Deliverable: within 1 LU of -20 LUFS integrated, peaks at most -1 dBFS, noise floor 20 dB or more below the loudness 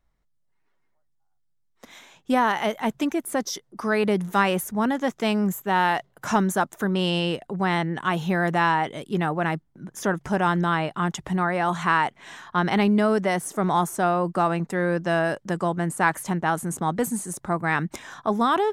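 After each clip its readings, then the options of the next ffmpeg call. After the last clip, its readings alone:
loudness -24.5 LUFS; peak -6.0 dBFS; loudness target -20.0 LUFS
-> -af "volume=4.5dB"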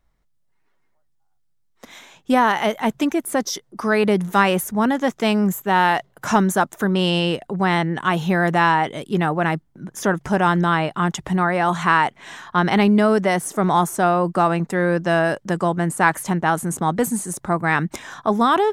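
loudness -20.0 LUFS; peak -1.5 dBFS; noise floor -64 dBFS

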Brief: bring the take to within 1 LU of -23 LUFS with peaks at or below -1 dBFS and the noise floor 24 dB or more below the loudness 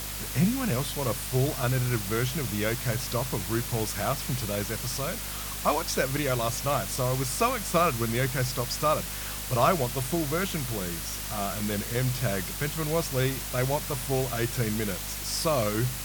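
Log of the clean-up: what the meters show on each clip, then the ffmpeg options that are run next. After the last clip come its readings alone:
hum 50 Hz; harmonics up to 250 Hz; hum level -38 dBFS; noise floor -35 dBFS; noise floor target -52 dBFS; loudness -28.0 LUFS; peak -8.5 dBFS; loudness target -23.0 LUFS
-> -af "bandreject=f=50:t=h:w=6,bandreject=f=100:t=h:w=6,bandreject=f=150:t=h:w=6,bandreject=f=200:t=h:w=6,bandreject=f=250:t=h:w=6"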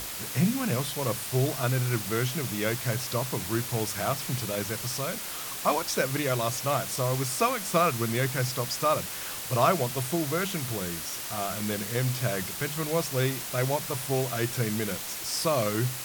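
hum none; noise floor -36 dBFS; noise floor target -52 dBFS
-> -af "afftdn=nr=16:nf=-36"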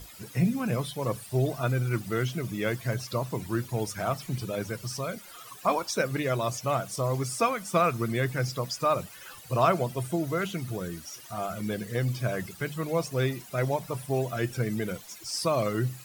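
noise floor -48 dBFS; noise floor target -54 dBFS
-> -af "afftdn=nr=6:nf=-48"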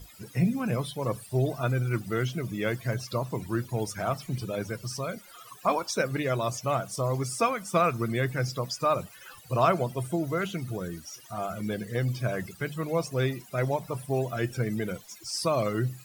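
noise floor -51 dBFS; noise floor target -54 dBFS
-> -af "afftdn=nr=6:nf=-51"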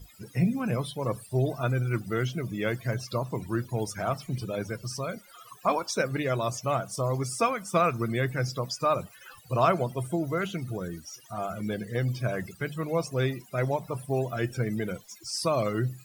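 noise floor -54 dBFS; loudness -29.5 LUFS; peak -9.5 dBFS; loudness target -23.0 LUFS
-> -af "volume=6.5dB"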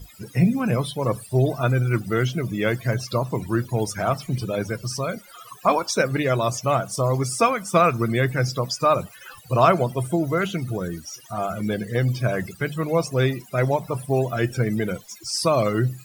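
loudness -23.0 LUFS; peak -3.0 dBFS; noise floor -47 dBFS

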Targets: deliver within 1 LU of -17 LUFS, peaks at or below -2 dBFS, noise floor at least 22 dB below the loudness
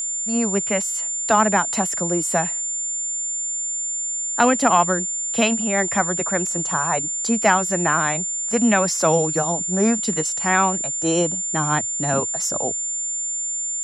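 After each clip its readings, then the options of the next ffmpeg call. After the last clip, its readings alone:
steady tone 7200 Hz; tone level -23 dBFS; loudness -20.0 LUFS; peak -3.0 dBFS; loudness target -17.0 LUFS
-> -af "bandreject=f=7.2k:w=30"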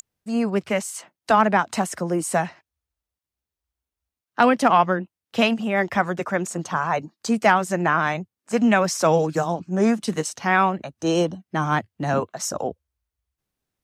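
steady tone none; loudness -22.0 LUFS; peak -4.0 dBFS; loudness target -17.0 LUFS
-> -af "volume=5dB,alimiter=limit=-2dB:level=0:latency=1"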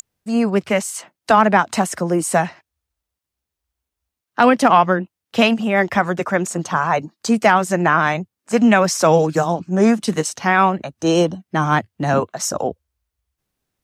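loudness -17.5 LUFS; peak -2.0 dBFS; noise floor -84 dBFS

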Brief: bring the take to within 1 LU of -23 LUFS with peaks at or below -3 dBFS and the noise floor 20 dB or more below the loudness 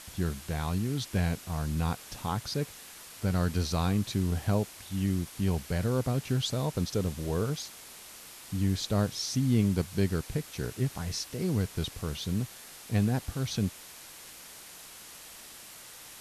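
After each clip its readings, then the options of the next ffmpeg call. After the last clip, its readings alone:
noise floor -48 dBFS; noise floor target -51 dBFS; loudness -31.0 LUFS; peak -14.5 dBFS; loudness target -23.0 LUFS
-> -af "afftdn=nr=6:nf=-48"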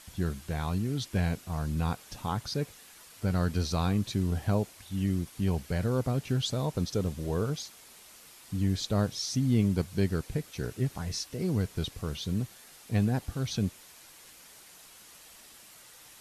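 noise floor -53 dBFS; loudness -31.0 LUFS; peak -14.5 dBFS; loudness target -23.0 LUFS
-> -af "volume=8dB"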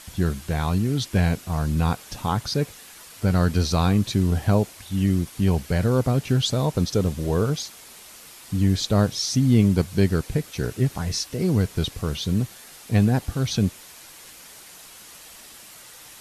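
loudness -23.0 LUFS; peak -6.5 dBFS; noise floor -45 dBFS

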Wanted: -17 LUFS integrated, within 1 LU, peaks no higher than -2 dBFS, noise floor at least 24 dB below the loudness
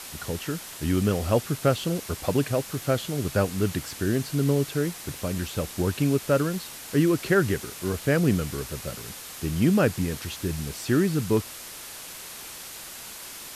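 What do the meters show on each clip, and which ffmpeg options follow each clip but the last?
noise floor -41 dBFS; noise floor target -50 dBFS; loudness -26.0 LUFS; peak -8.5 dBFS; loudness target -17.0 LUFS
-> -af "afftdn=nr=9:nf=-41"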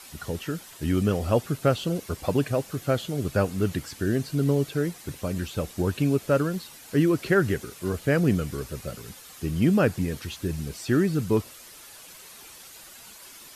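noise floor -47 dBFS; noise floor target -51 dBFS
-> -af "afftdn=nr=6:nf=-47"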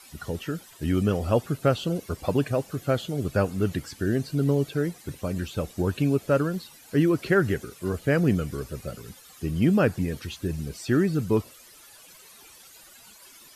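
noise floor -51 dBFS; loudness -26.5 LUFS; peak -8.5 dBFS; loudness target -17.0 LUFS
-> -af "volume=9.5dB,alimiter=limit=-2dB:level=0:latency=1"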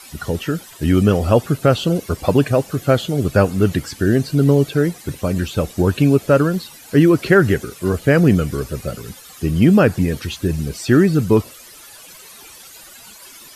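loudness -17.0 LUFS; peak -2.0 dBFS; noise floor -41 dBFS

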